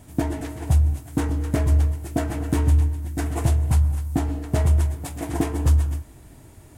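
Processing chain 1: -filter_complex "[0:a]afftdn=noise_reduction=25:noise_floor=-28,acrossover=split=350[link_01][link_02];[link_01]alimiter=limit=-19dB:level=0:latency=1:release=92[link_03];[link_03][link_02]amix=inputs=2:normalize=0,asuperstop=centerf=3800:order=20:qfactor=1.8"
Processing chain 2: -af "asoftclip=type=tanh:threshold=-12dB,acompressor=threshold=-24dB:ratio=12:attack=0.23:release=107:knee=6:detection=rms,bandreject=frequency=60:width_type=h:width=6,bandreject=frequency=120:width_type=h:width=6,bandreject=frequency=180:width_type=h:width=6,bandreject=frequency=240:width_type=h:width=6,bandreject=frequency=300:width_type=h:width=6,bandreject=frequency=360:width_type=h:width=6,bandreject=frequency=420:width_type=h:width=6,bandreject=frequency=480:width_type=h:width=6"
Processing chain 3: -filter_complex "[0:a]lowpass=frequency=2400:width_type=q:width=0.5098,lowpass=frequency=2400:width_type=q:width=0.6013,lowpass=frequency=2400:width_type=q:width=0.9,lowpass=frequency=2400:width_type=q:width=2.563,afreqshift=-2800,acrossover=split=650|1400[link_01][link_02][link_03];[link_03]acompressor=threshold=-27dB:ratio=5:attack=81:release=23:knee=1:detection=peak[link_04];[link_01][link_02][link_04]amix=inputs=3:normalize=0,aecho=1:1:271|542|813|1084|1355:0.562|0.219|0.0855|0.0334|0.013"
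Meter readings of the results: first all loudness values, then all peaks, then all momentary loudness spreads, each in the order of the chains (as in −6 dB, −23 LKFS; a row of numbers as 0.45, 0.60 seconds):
−27.5, −31.5, −19.5 LKFS; −12.0, −20.5, −6.5 dBFS; 5, 5, 7 LU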